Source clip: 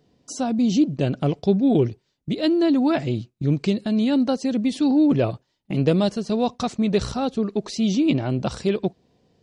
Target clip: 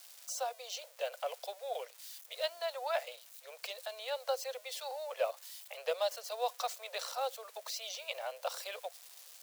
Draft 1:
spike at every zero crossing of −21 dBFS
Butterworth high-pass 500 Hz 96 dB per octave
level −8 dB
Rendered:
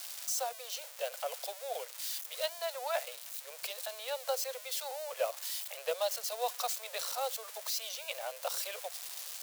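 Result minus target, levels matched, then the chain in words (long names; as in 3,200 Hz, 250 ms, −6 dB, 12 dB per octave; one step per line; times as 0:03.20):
spike at every zero crossing: distortion +11 dB
spike at every zero crossing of −32 dBFS
Butterworth high-pass 500 Hz 96 dB per octave
level −8 dB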